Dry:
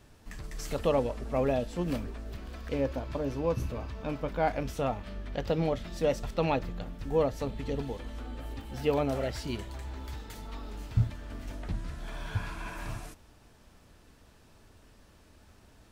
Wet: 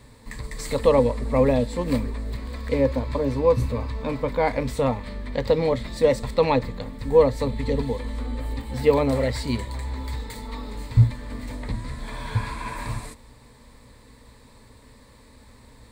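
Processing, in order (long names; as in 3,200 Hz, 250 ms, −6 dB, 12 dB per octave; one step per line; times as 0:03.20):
EQ curve with evenly spaced ripples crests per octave 0.98, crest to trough 11 dB
level +6.5 dB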